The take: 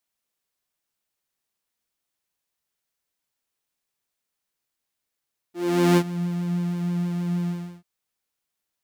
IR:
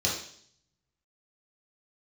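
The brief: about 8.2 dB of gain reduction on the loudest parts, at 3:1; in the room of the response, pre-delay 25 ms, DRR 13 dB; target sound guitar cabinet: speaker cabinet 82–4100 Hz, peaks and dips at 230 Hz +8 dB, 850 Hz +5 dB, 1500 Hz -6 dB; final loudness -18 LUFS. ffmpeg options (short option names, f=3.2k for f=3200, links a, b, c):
-filter_complex "[0:a]acompressor=threshold=-26dB:ratio=3,asplit=2[a][b];[1:a]atrim=start_sample=2205,adelay=25[c];[b][c]afir=irnorm=-1:irlink=0,volume=-22.5dB[d];[a][d]amix=inputs=2:normalize=0,highpass=82,equalizer=f=230:t=q:w=4:g=8,equalizer=f=850:t=q:w=4:g=5,equalizer=f=1.5k:t=q:w=4:g=-6,lowpass=f=4.1k:w=0.5412,lowpass=f=4.1k:w=1.3066,volume=10.5dB"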